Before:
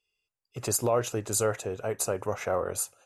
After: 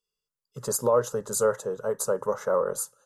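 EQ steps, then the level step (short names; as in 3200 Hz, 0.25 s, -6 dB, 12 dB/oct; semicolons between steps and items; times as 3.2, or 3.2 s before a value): dynamic EQ 710 Hz, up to +8 dB, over -40 dBFS, Q 0.81; bell 130 Hz +6 dB 0.67 oct; fixed phaser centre 480 Hz, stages 8; 0.0 dB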